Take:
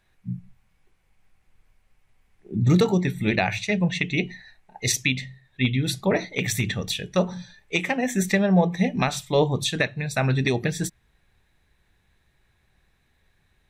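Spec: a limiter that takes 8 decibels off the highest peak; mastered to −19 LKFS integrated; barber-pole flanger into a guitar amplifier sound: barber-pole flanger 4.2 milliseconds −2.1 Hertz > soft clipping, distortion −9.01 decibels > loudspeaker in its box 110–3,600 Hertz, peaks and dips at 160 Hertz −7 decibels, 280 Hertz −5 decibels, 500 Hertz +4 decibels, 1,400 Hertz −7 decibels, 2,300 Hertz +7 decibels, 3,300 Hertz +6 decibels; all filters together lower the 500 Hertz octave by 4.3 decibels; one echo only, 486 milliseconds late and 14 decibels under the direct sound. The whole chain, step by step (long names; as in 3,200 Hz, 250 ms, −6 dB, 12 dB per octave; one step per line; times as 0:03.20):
parametric band 500 Hz −7 dB
brickwall limiter −16.5 dBFS
single-tap delay 486 ms −14 dB
barber-pole flanger 4.2 ms −2.1 Hz
soft clipping −30 dBFS
loudspeaker in its box 110–3,600 Hz, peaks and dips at 160 Hz −7 dB, 280 Hz −5 dB, 500 Hz +4 dB, 1,400 Hz −7 dB, 2,300 Hz +7 dB, 3,300 Hz +6 dB
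level +16.5 dB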